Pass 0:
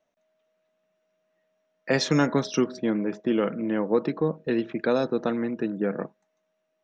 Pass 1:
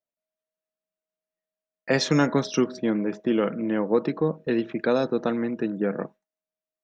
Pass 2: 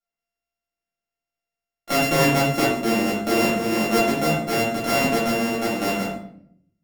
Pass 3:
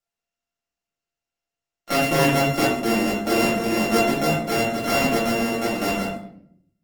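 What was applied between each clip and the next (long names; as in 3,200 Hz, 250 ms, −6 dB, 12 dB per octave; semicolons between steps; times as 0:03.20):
noise gate with hold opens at −39 dBFS; level +1 dB
samples sorted by size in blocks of 64 samples; rectangular room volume 110 cubic metres, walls mixed, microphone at 2.3 metres; level −6 dB
Opus 16 kbit/s 48,000 Hz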